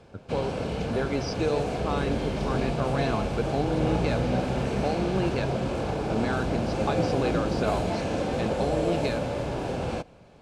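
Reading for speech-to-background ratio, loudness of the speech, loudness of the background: -2.5 dB, -31.5 LUFS, -29.0 LUFS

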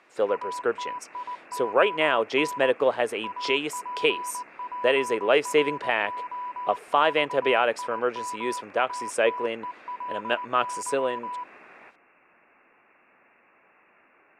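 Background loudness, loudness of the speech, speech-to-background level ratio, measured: -35.5 LUFS, -25.5 LUFS, 10.0 dB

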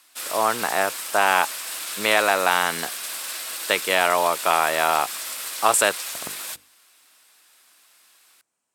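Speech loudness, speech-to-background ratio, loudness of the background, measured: -21.5 LUFS, 8.0 dB, -29.5 LUFS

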